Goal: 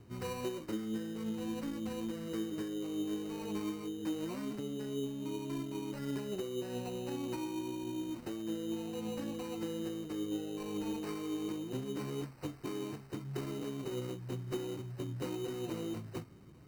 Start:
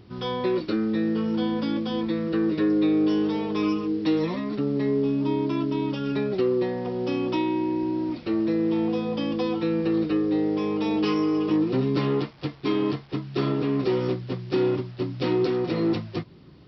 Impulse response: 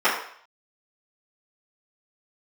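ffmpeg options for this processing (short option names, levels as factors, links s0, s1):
-filter_complex "[0:a]lowshelf=f=68:g=6.5,bandreject=f=133.9:t=h:w=4,bandreject=f=267.8:t=h:w=4,bandreject=f=401.7:t=h:w=4,bandreject=f=535.6:t=h:w=4,bandreject=f=669.5:t=h:w=4,bandreject=f=803.4:t=h:w=4,bandreject=f=937.3:t=h:w=4,bandreject=f=1071.2:t=h:w=4,bandreject=f=1205.1:t=h:w=4,bandreject=f=1339:t=h:w=4,bandreject=f=1472.9:t=h:w=4,bandreject=f=1606.8:t=h:w=4,bandreject=f=1740.7:t=h:w=4,bandreject=f=1874.6:t=h:w=4,bandreject=f=2008.5:t=h:w=4,bandreject=f=2142.4:t=h:w=4,bandreject=f=2276.3:t=h:w=4,bandreject=f=2410.2:t=h:w=4,bandreject=f=2544.1:t=h:w=4,bandreject=f=2678:t=h:w=4,bandreject=f=2811.9:t=h:w=4,bandreject=f=2945.8:t=h:w=4,bandreject=f=3079.7:t=h:w=4,bandreject=f=3213.6:t=h:w=4,bandreject=f=3347.5:t=h:w=4,bandreject=f=3481.4:t=h:w=4,bandreject=f=3615.3:t=h:w=4,bandreject=f=3749.2:t=h:w=4,bandreject=f=3883.1:t=h:w=4,bandreject=f=4017:t=h:w=4,acompressor=threshold=0.0355:ratio=6,flanger=delay=6.9:depth=3.5:regen=55:speed=1.8:shape=triangular,acrossover=split=250[s0][s1];[s1]acrusher=samples=13:mix=1:aa=0.000001[s2];[s0][s2]amix=inputs=2:normalize=0,volume=0.708"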